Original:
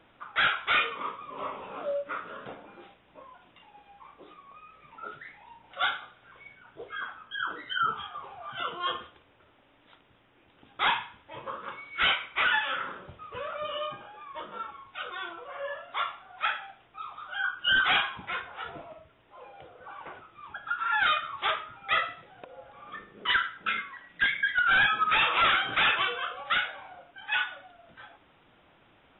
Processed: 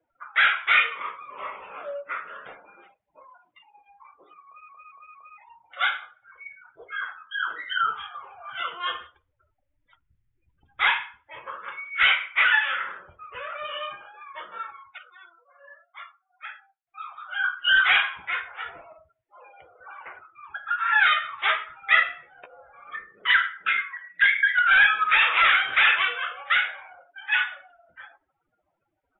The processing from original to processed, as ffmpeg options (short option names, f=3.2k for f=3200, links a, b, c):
-filter_complex "[0:a]asettb=1/sr,asplit=3[a][b][c];[a]atrim=end=8.804[d];[b]atrim=start=8.8:end=10.82,asetpts=PTS-STARTPTS,afade=t=in:d=0.004:c=qsin,afade=t=out:st=2.016:d=0.004:c=qsin,asubboost=boost=6.5:cutoff=160[e];[c]atrim=start=10.816[f];[d][e]acrossfade=d=0.004:c1=hsin:c2=qsin[g];[g][f]acrossfade=d=0.004:c1=qsin:c2=hsin,asettb=1/sr,asplit=3[h][i][j];[h]atrim=end=20.704[k];[i]atrim=start=20.7:end=22.96,asetpts=PTS-STARTPTS,afade=t=in:d=0.004:c=qsin,afade=t=out:st=2.256:d=0.004:c=qsin,asplit=2[l][m];[m]adelay=14,volume=-5dB[n];[l][n]amix=inputs=2:normalize=0,atrim=end_sample=99666[o];[j]atrim=start=22.956[p];[k][o]acrossfade=d=0.004:c1=hsin:c2=qsin[q];[q][p]acrossfade=d=0.004:c1=qsin:c2=hsin,asplit=7[r][s][t][u][v][w][x];[r]atrim=end=4.692[y];[s]atrim=start=4.458:end=4.692[z];[t]atrim=start=4.458:end=4.692[aa];[u]atrim=start=4.458:end=4.692[ab];[v]atrim=start=5.378:end=14.98,asetpts=PTS-STARTPTS,afade=t=out:st=9.382:d=0.22:c=log:silence=0.177828[ac];[w]atrim=start=14.98:end=16.87,asetpts=PTS-STARTPTS,volume=-15dB[ad];[x]atrim=start=16.87,asetpts=PTS-STARTPTS,afade=t=in:d=0.22:c=log:silence=0.177828[ae];[y][z]acrossfade=d=0.004:c1=hsin:c2=hsin[af];[af][aa]acrossfade=d=0.004:c1=hsin:c2=hsin[ag];[ag][ab]acrossfade=d=0.004:c1=hsin:c2=hsin[ah];[ac][ad][ae]concat=n=3:v=0:a=1[ai];[ah][ai]acrossfade=d=0.004:c1=hsin:c2=hsin,afftdn=nr=34:nf=-52,equalizer=f=125:t=o:w=1:g=-7,equalizer=f=250:t=o:w=1:g=-10,equalizer=f=2k:t=o:w=1:g=12,volume=-2dB"